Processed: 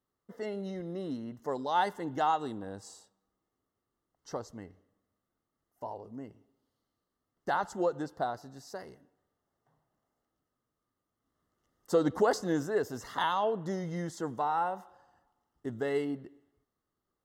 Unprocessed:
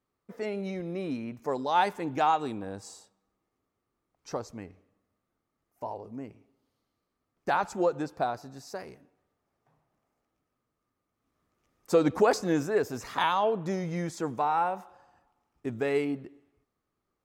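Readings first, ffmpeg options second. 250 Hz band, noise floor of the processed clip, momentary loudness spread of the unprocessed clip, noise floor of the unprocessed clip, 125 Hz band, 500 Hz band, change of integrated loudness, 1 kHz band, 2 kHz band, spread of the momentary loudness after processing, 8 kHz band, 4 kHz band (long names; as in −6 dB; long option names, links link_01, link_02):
−3.5 dB, below −85 dBFS, 16 LU, −83 dBFS, −3.5 dB, −3.5 dB, −3.5 dB, −3.5 dB, −4.0 dB, 16 LU, −3.5 dB, −3.5 dB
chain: -af "asuperstop=centerf=2400:order=8:qfactor=4.4,volume=-3.5dB"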